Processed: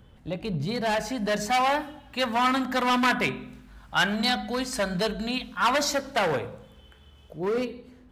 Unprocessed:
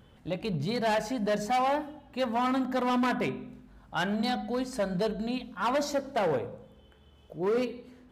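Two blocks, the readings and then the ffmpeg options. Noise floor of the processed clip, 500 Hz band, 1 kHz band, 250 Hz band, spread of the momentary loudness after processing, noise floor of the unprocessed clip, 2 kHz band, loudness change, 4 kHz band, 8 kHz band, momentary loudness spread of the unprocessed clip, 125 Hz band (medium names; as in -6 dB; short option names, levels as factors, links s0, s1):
-53 dBFS, +1.0 dB, +4.5 dB, +1.5 dB, 11 LU, -58 dBFS, +8.5 dB, +4.0 dB, +9.5 dB, +9.5 dB, 10 LU, +2.5 dB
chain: -filter_complex "[0:a]lowshelf=f=96:g=9,acrossover=split=380|1100[s0][s1][s2];[s2]dynaudnorm=f=280:g=9:m=3.35[s3];[s0][s1][s3]amix=inputs=3:normalize=0"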